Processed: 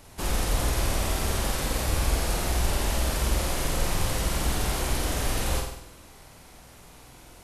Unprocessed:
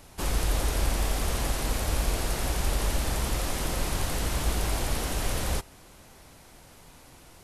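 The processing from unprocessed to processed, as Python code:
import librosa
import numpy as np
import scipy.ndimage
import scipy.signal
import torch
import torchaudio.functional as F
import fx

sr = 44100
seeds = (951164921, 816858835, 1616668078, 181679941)

y = fx.room_flutter(x, sr, wall_m=8.3, rt60_s=0.74)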